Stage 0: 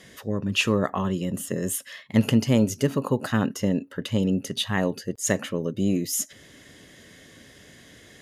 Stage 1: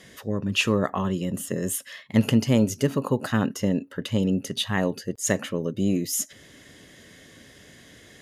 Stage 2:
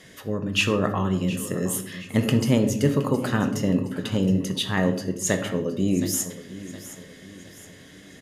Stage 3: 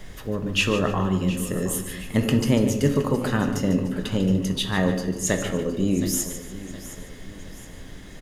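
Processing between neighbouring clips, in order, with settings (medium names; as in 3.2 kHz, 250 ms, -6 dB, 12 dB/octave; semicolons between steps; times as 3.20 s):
no audible change
feedback delay 718 ms, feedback 46%, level -15.5 dB; on a send at -6 dB: reverberation RT60 0.60 s, pre-delay 6 ms
added noise brown -40 dBFS; feedback delay 147 ms, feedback 31%, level -11 dB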